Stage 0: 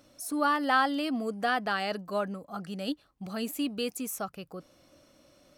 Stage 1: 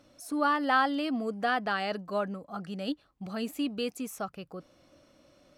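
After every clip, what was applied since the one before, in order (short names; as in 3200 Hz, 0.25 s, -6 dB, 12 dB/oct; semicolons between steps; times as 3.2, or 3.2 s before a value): high shelf 7800 Hz -11.5 dB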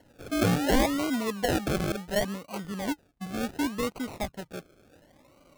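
decimation with a swept rate 36×, swing 60% 0.69 Hz; gain +2.5 dB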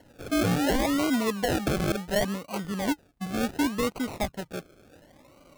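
limiter -21.5 dBFS, peak gain reduction 9 dB; gain +3.5 dB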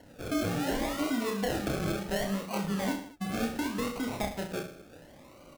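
compressor, threshold -30 dBFS, peak gain reduction 9 dB; reverse bouncing-ball echo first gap 30 ms, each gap 1.2×, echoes 5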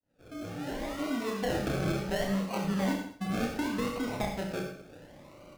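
opening faded in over 1.53 s; high shelf 6400 Hz -6.5 dB; non-linear reverb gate 0.11 s rising, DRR 6.5 dB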